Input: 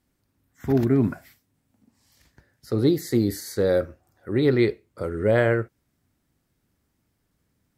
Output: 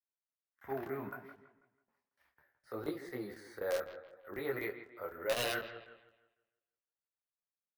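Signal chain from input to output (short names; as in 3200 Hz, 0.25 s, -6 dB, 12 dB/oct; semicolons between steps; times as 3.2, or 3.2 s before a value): notches 50/100 Hz; gate with hold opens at -49 dBFS; three-band isolator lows -23 dB, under 600 Hz, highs -20 dB, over 2300 Hz; in parallel at -1 dB: limiter -25.5 dBFS, peak gain reduction 11.5 dB; on the sum: wrapped overs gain 16.5 dB; careless resampling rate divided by 3×, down filtered, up hold; analogue delay 0.164 s, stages 4096, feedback 38%, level -12 dB; crackling interface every 0.25 s, samples 1024, zero, from 0.34; detuned doubles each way 24 cents; gain -6 dB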